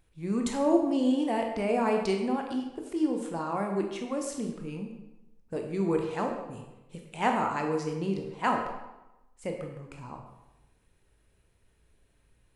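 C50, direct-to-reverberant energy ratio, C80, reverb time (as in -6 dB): 5.0 dB, 2.0 dB, 7.0 dB, 1.0 s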